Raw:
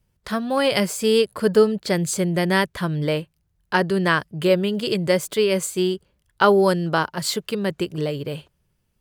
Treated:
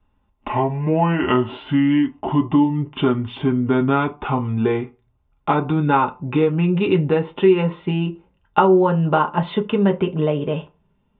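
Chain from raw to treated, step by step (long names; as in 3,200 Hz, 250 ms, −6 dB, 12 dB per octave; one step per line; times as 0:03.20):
gliding playback speed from 56% → 105%
low-shelf EQ 89 Hz +9 dB
downward compressor 6 to 1, threshold −20 dBFS, peak gain reduction 11 dB
Chebyshev low-pass with heavy ripple 3,700 Hz, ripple 9 dB
convolution reverb RT60 0.30 s, pre-delay 3 ms, DRR 0.5 dB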